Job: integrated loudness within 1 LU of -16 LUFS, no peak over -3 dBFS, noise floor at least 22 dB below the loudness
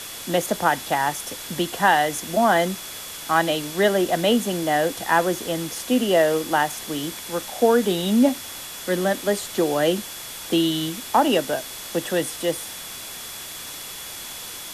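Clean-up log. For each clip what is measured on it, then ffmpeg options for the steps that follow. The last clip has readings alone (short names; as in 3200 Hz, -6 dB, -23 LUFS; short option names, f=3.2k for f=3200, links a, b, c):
steady tone 3400 Hz; tone level -42 dBFS; noise floor -36 dBFS; noise floor target -45 dBFS; loudness -23.0 LUFS; peak -4.5 dBFS; loudness target -16.0 LUFS
-> -af "bandreject=f=3.4k:w=30"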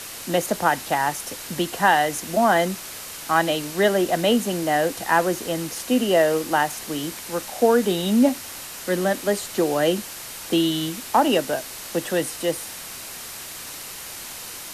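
steady tone none; noise floor -36 dBFS; noise floor target -45 dBFS
-> -af "afftdn=nr=9:nf=-36"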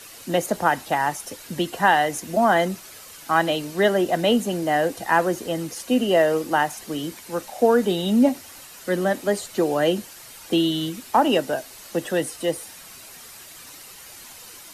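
noise floor -43 dBFS; noise floor target -45 dBFS
-> -af "afftdn=nr=6:nf=-43"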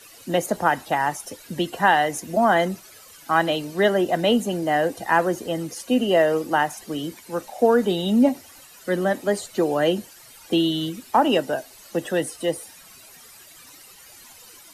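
noise floor -47 dBFS; loudness -22.5 LUFS; peak -4.5 dBFS; loudness target -16.0 LUFS
-> -af "volume=6.5dB,alimiter=limit=-3dB:level=0:latency=1"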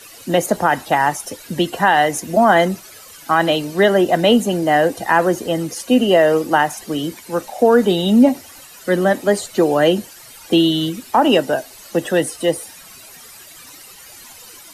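loudness -16.5 LUFS; peak -3.0 dBFS; noise floor -41 dBFS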